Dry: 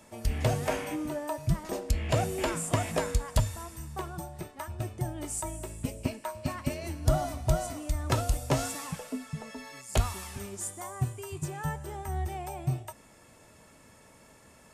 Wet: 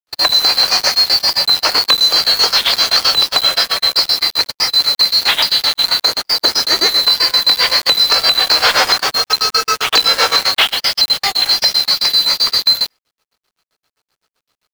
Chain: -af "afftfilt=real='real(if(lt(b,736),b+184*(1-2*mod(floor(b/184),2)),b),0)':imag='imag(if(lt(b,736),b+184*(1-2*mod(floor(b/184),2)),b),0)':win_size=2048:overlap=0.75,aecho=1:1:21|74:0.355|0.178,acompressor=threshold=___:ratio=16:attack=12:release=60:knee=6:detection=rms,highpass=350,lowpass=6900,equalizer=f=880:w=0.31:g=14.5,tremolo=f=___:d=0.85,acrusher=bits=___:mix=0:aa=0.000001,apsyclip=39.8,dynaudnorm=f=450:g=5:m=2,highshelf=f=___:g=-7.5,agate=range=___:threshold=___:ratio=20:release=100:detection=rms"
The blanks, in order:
0.0141, 7.7, 7, 3900, 0.00794, 0.158